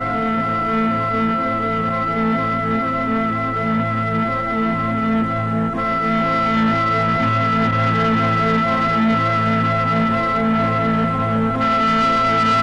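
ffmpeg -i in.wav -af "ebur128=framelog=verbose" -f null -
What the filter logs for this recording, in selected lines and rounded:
Integrated loudness:
  I:         -17.8 LUFS
  Threshold: -27.8 LUFS
Loudness range:
  LRA:         2.7 LU
  Threshold: -37.9 LUFS
  LRA low:   -19.4 LUFS
  LRA high:  -16.7 LUFS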